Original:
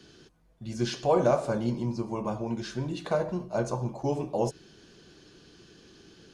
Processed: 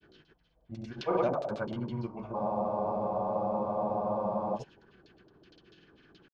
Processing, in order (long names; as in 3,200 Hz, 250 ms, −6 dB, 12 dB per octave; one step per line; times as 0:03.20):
delay with a high-pass on its return 62 ms, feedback 71%, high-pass 2,000 Hz, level −9 dB
auto-filter low-pass saw down 5.6 Hz 570–4,400 Hz
granular cloud 100 ms, grains 19 per second, spray 140 ms, pitch spread up and down by 0 semitones
frozen spectrum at 0:02.37, 2.20 s
level −5 dB